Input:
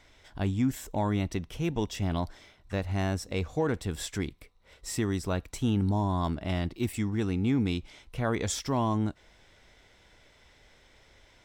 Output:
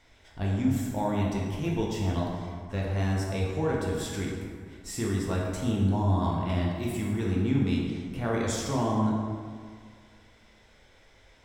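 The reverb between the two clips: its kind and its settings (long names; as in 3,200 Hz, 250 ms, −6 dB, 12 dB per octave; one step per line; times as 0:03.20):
dense smooth reverb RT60 2 s, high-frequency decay 0.5×, DRR −3.5 dB
level −4 dB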